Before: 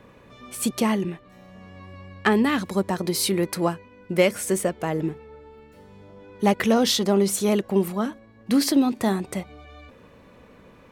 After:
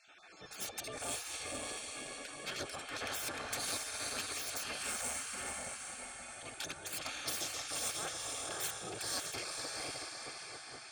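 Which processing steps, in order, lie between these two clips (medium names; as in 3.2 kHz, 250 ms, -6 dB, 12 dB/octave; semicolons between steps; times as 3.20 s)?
random holes in the spectrogram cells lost 27%; bass shelf 71 Hz +5 dB; compressor with a negative ratio -27 dBFS, ratio -0.5; steep low-pass 10 kHz 96 dB/octave; echo that smears into a reverb 528 ms, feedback 47%, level -4 dB; saturation -28 dBFS, distortion -8 dB; hum notches 50/100/150 Hz; spectral gate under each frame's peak -15 dB weak; comb of notches 970 Hz; trim +1 dB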